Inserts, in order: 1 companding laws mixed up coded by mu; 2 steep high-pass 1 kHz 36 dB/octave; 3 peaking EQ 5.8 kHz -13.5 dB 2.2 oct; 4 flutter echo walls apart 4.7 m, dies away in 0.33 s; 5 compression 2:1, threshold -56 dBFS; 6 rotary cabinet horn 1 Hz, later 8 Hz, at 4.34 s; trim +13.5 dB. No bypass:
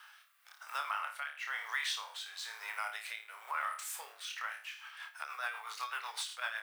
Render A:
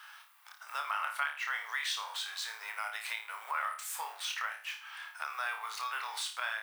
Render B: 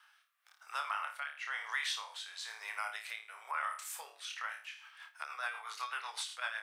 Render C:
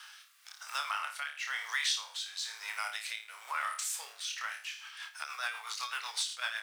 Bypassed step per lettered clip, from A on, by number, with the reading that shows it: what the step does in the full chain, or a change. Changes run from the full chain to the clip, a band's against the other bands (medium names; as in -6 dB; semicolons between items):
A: 6, loudness change +3.0 LU; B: 1, distortion -24 dB; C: 3, 8 kHz band +6.5 dB